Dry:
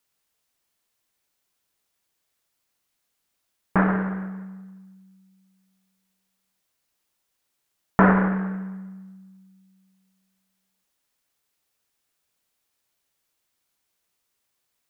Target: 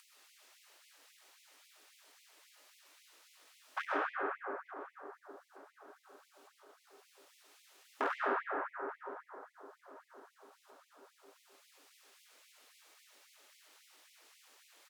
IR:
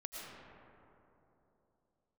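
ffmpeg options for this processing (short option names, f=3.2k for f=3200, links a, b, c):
-filter_complex "[0:a]alimiter=limit=-8.5dB:level=0:latency=1:release=467,volume=14dB,asoftclip=hard,volume=-14dB,asplit=2[a][b];[b]adelay=901,lowpass=f=1.9k:p=1,volume=-20dB,asplit=2[c][d];[d]adelay=901,lowpass=f=1.9k:p=1,volume=0.34,asplit=2[e][f];[f]adelay=901,lowpass=f=1.9k:p=1,volume=0.34[g];[a][c][e][g]amix=inputs=4:normalize=0,acompressor=mode=upward:threshold=-35dB:ratio=2.5,highshelf=f=2.4k:g=7,asetrate=41625,aresample=44100,atempo=1.05946,aemphasis=mode=reproduction:type=50kf[h];[1:a]atrim=start_sample=2205,asetrate=42336,aresample=44100[i];[h][i]afir=irnorm=-1:irlink=0,afftfilt=real='re*gte(b*sr/1024,230*pow(2000/230,0.5+0.5*sin(2*PI*3.7*pts/sr)))':imag='im*gte(b*sr/1024,230*pow(2000/230,0.5+0.5*sin(2*PI*3.7*pts/sr)))':win_size=1024:overlap=0.75,volume=-4dB"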